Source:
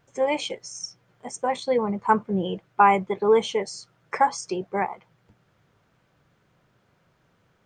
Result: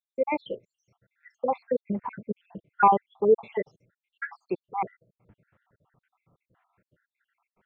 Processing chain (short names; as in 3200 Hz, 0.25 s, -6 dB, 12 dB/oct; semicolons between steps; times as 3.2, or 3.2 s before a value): random spectral dropouts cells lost 73%; LPF 2400 Hz 24 dB/oct